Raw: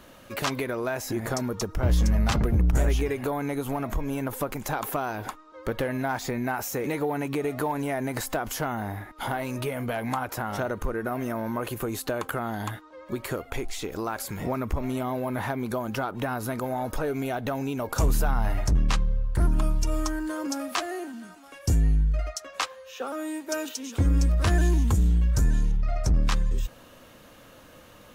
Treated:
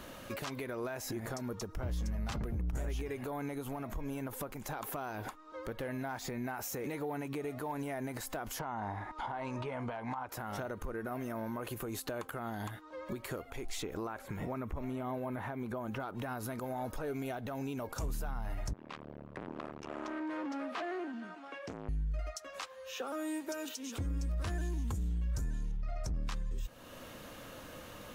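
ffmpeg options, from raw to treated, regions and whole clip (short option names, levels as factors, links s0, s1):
-filter_complex "[0:a]asettb=1/sr,asplit=3[s0][s1][s2];[s0]atrim=end=8.594[s3];[s1]atrim=start=8.59:end=10.28,asetpts=PTS-STARTPTS,afade=t=in:d=0.004:c=qsin,afade=t=out:st=1.686:d=0.004:c=qsin,equalizer=f=940:w=2.1:g=11,acrossover=split=4500[s4][s5];[s5]acompressor=threshold=0.00251:ratio=4:attack=1:release=60[s6];[s4][s6]amix=inputs=2:normalize=0,lowpass=f=8000:w=0.5412,lowpass=f=8000:w=1.3066[s7];[s2]atrim=start=10.276[s8];[s3][s7]acrossfade=d=0.004:c1=hsin:c2=qsin[s9];[s9][s8]acrossfade=d=0.004:c1=qsin:c2=hsin,asettb=1/sr,asplit=3[s10][s11][s12];[s10]atrim=end=13.824[s13];[s11]atrim=start=13.82:end=16,asetpts=PTS-STARTPTS,afade=t=in:d=0.004:c=qsin,afade=t=out:st=2.176:d=0.004:c=qsin,equalizer=f=4800:t=o:w=0.2:g=-7,acrossover=split=2700[s14][s15];[s15]acompressor=threshold=0.00224:ratio=4:attack=1:release=60[s16];[s14][s16]amix=inputs=2:normalize=0[s17];[s12]atrim=start=15.996[s18];[s13][s17]acrossfade=d=0.004:c1=hsin:c2=qsin[s19];[s19][s18]acrossfade=d=0.004:c1=qsin:c2=hsin,asettb=1/sr,asplit=3[s20][s21][s22];[s20]atrim=end=18.734[s23];[s21]atrim=start=18.73:end=21.89,asetpts=PTS-STARTPTS,afade=t=in:d=0.004:c=qsin,afade=t=out:st=3.156:d=0.004:c=qsin,volume=42.2,asoftclip=hard,volume=0.0237,highpass=230,lowpass=2800[s24];[s22]atrim=start=21.886[s25];[s23][s24]acrossfade=d=0.004:c1=hsin:c2=qsin[s26];[s26][s25]acrossfade=d=0.004:c1=qsin:c2=hsin,acompressor=threshold=0.00562:ratio=1.5,alimiter=level_in=2.37:limit=0.0631:level=0:latency=1:release=260,volume=0.422,volume=1.26"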